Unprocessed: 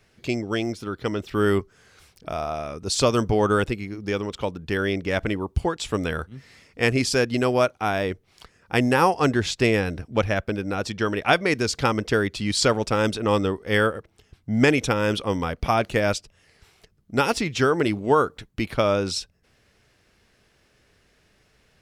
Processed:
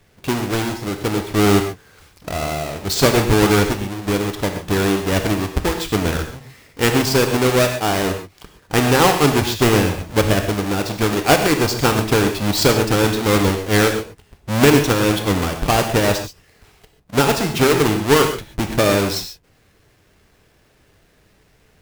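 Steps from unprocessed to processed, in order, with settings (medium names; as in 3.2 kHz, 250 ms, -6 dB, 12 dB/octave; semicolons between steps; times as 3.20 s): square wave that keeps the level; gated-style reverb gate 160 ms flat, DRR 5 dB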